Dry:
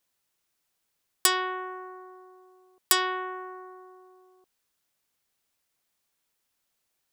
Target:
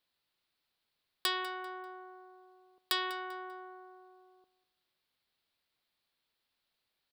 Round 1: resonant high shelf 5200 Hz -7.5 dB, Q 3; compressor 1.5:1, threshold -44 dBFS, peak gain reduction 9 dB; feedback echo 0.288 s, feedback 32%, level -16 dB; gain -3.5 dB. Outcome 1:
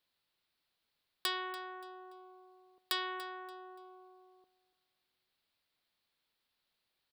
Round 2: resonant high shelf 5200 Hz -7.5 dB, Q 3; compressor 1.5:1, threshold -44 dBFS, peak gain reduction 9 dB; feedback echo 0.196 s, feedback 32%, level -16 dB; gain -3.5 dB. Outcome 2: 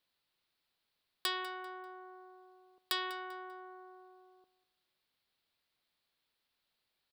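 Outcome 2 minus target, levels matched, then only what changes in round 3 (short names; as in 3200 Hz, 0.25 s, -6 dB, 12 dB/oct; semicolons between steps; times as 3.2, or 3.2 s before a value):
compressor: peak gain reduction +3 dB
change: compressor 1.5:1, threshold -35.5 dBFS, peak gain reduction 6 dB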